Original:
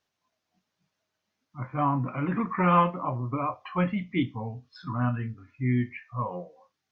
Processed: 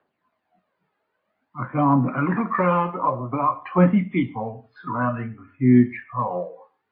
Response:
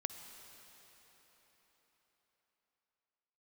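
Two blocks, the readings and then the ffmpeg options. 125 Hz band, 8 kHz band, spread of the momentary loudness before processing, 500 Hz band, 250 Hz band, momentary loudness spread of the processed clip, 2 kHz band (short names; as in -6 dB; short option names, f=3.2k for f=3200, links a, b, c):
+4.5 dB, n/a, 15 LU, +8.0 dB, +8.5 dB, 16 LU, +5.0 dB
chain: -filter_complex "[0:a]acrossover=split=180 2100:gain=0.141 1 0.0891[a][b][c];[a][b][c]amix=inputs=3:normalize=0,acrossover=split=210|3000[d][e][f];[e]acompressor=threshold=-29dB:ratio=6[g];[d][g][f]amix=inputs=3:normalize=0,aphaser=in_gain=1:out_gain=1:delay=2.5:decay=0.53:speed=0.52:type=triangular,asplit=2[h][i];[1:a]atrim=start_sample=2205,atrim=end_sample=6615,highshelf=f=4.1k:g=-3.5[j];[i][j]afir=irnorm=-1:irlink=0,volume=1.5dB[k];[h][k]amix=inputs=2:normalize=0,volume=4dB" -ar 11025 -c:a libmp3lame -b:a 24k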